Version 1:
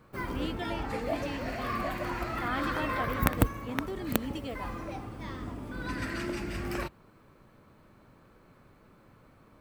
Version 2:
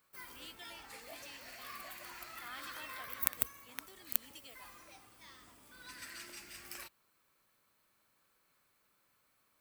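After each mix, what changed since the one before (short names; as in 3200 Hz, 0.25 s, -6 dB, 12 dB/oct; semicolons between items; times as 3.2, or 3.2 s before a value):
master: add pre-emphasis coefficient 0.97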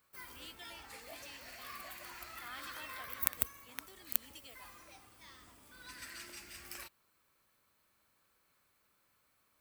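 background: add bell 68 Hz +10.5 dB 0.53 oct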